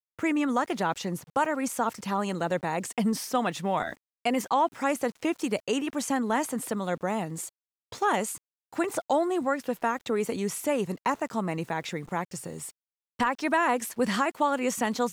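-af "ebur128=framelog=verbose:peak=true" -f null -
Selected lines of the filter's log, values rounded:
Integrated loudness:
  I:         -28.7 LUFS
  Threshold: -38.9 LUFS
Loudness range:
  LRA:         1.9 LU
  Threshold: -49.3 LUFS
  LRA low:   -30.4 LUFS
  LRA high:  -28.5 LUFS
True peak:
  Peak:      -13.7 dBFS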